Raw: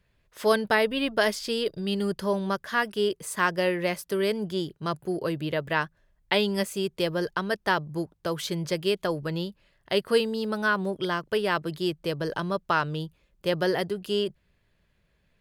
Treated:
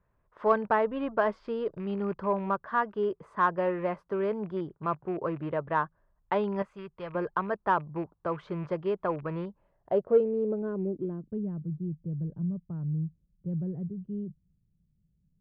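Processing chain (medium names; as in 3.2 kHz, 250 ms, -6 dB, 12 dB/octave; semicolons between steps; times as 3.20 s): rattle on loud lows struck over -34 dBFS, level -30 dBFS; low-pass sweep 1.1 kHz -> 170 Hz, 9.39–11.67 s; in parallel at -10.5 dB: saturation -15 dBFS, distortion -14 dB; 6.62–7.15 s: on the sum: peaking EQ 340 Hz -12 dB 2.2 oct; trim -6.5 dB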